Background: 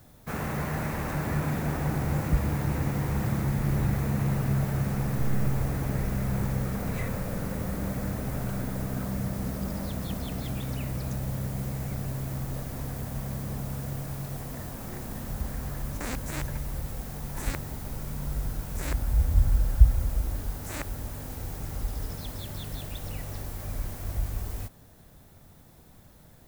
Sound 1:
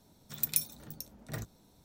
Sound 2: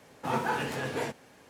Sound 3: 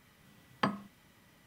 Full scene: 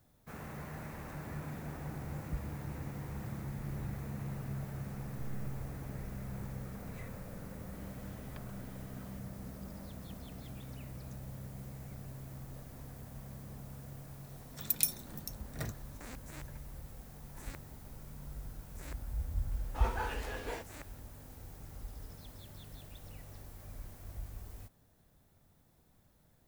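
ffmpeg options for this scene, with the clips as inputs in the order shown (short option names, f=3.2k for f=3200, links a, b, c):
-filter_complex "[0:a]volume=-14dB[a];[3:a]acompressor=threshold=-53dB:ratio=6:attack=3.2:release=140:knee=1:detection=peak[b];[2:a]highpass=300[c];[b]atrim=end=1.46,asetpts=PTS-STARTPTS,volume=-0.5dB,afade=t=in:d=0.004:c=hsin,afade=t=out:st=1.456:d=0.004:c=hsin,adelay=7730[d];[1:a]atrim=end=1.84,asetpts=PTS-STARTPTS,volume=-0.5dB,afade=t=in:d=0.004:c=hsin,afade=t=out:st=1.836:d=0.004:c=hsin,adelay=14270[e];[c]atrim=end=1.49,asetpts=PTS-STARTPTS,volume=-8dB,afade=t=in:d=0.004:c=hsin,afade=t=out:st=1.486:d=0.004:c=hsin,adelay=19510[f];[a][d][e][f]amix=inputs=4:normalize=0"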